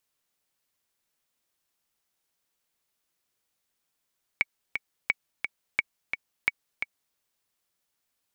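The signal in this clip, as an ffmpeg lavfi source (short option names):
-f lavfi -i "aevalsrc='pow(10,(-9-6.5*gte(mod(t,2*60/174),60/174))/20)*sin(2*PI*2250*mod(t,60/174))*exp(-6.91*mod(t,60/174)/0.03)':d=2.75:s=44100"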